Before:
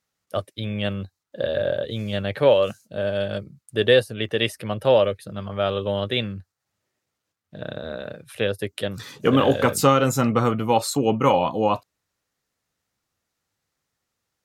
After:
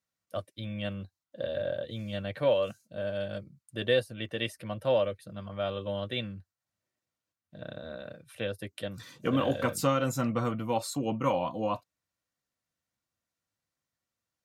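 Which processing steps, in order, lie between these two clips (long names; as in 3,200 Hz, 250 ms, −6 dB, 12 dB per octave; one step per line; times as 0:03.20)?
notch comb filter 420 Hz
level −8.5 dB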